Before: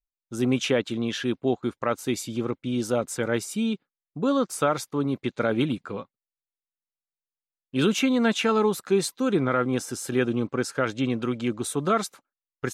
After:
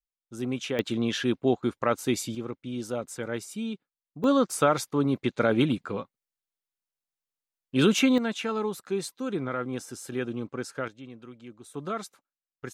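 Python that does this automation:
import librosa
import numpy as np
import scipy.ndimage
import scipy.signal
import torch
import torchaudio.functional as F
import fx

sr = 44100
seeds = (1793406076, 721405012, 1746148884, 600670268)

y = fx.gain(x, sr, db=fx.steps((0.0, -7.5), (0.79, 0.5), (2.35, -7.0), (4.24, 1.0), (8.18, -7.5), (10.88, -18.5), (11.74, -9.5)))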